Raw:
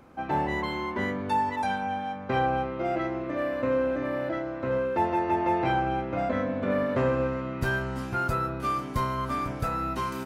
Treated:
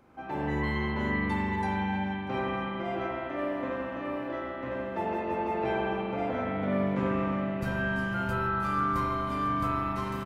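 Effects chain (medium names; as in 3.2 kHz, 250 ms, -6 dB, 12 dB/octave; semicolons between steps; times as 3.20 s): hum notches 50/100/150/200 Hz; echo from a far wall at 110 m, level -9 dB; spring tank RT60 3.2 s, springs 41 ms, chirp 45 ms, DRR -5 dB; trim -7.5 dB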